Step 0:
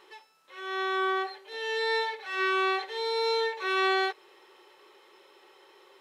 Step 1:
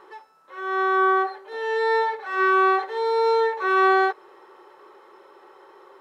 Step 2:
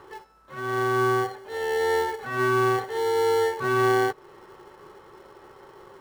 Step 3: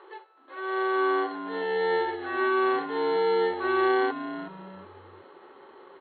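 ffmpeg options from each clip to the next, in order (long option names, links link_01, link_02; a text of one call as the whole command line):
ffmpeg -i in.wav -af "highshelf=frequency=1900:width_type=q:width=1.5:gain=-10.5,volume=7.5dB" out.wav
ffmpeg -i in.wav -filter_complex "[0:a]acrossover=split=390[link_01][link_02];[link_02]acompressor=threshold=-34dB:ratio=1.5[link_03];[link_01][link_03]amix=inputs=2:normalize=0,asplit=2[link_04][link_05];[link_05]acrusher=samples=35:mix=1:aa=0.000001,volume=-7dB[link_06];[link_04][link_06]amix=inputs=2:normalize=0" out.wav
ffmpeg -i in.wav -filter_complex "[0:a]afftfilt=real='re*between(b*sr/4096,320,4400)':imag='im*between(b*sr/4096,320,4400)':win_size=4096:overlap=0.75,asplit=4[link_01][link_02][link_03][link_04];[link_02]adelay=371,afreqshift=-96,volume=-12dB[link_05];[link_03]adelay=742,afreqshift=-192,volume=-21.9dB[link_06];[link_04]adelay=1113,afreqshift=-288,volume=-31.8dB[link_07];[link_01][link_05][link_06][link_07]amix=inputs=4:normalize=0,volume=-2dB" out.wav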